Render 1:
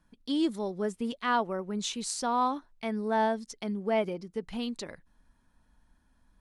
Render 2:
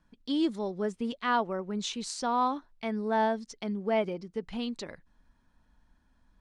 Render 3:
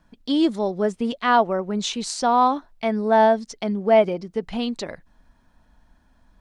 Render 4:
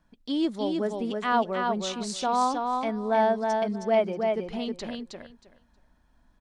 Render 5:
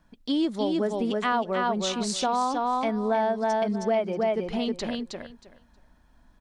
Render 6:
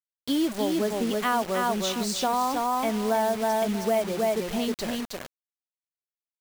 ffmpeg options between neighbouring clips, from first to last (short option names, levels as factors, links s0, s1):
-af "lowpass=6600"
-af "equalizer=f=670:t=o:w=0.52:g=5.5,volume=2.51"
-af "aecho=1:1:316|632|948:0.631|0.107|0.0182,volume=0.447"
-af "acompressor=threshold=0.0501:ratio=6,volume=1.68"
-af "acrusher=bits=5:mix=0:aa=0.000001"